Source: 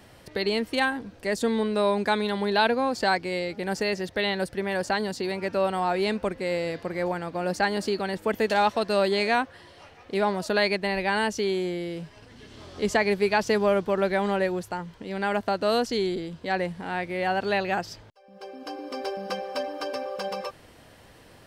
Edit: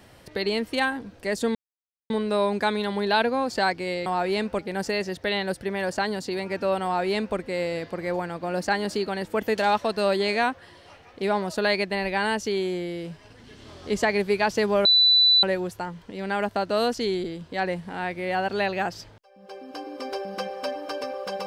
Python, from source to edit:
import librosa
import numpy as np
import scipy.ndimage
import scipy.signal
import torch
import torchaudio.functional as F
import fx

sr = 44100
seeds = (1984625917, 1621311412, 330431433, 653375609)

y = fx.edit(x, sr, fx.insert_silence(at_s=1.55, length_s=0.55),
    fx.duplicate(start_s=5.76, length_s=0.53, to_s=3.51),
    fx.bleep(start_s=13.77, length_s=0.58, hz=3980.0, db=-14.0), tone=tone)